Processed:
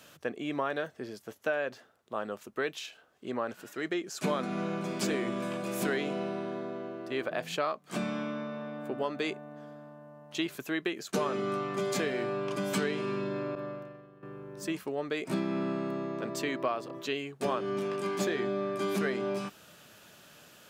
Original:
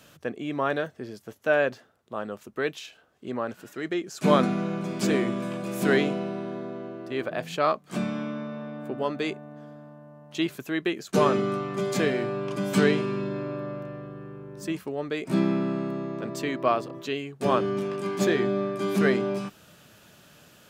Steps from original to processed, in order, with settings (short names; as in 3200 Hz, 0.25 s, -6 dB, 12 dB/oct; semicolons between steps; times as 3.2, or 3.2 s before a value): 13.55–14.23 expander -30 dBFS; low shelf 220 Hz -8.5 dB; compressor 6:1, threshold -27 dBFS, peak gain reduction 11 dB